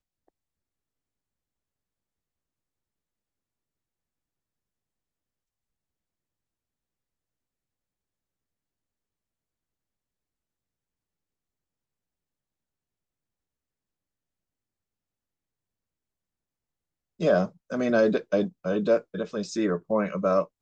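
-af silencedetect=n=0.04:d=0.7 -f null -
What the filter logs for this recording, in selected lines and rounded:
silence_start: 0.00
silence_end: 17.21 | silence_duration: 17.21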